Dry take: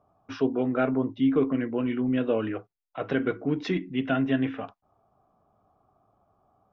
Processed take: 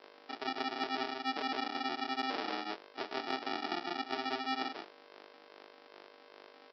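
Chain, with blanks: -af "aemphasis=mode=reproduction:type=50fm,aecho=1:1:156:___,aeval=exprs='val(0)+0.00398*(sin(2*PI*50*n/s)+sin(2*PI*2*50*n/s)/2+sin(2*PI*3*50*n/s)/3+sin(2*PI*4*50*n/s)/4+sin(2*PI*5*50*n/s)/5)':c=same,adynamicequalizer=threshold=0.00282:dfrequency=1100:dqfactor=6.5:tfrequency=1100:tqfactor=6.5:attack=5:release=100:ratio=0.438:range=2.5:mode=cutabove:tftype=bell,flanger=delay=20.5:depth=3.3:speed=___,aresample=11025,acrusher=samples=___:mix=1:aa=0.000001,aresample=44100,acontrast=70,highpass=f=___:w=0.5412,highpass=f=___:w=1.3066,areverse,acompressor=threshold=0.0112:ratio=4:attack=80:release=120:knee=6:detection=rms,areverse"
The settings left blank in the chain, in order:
0.668, 2.5, 21, 380, 380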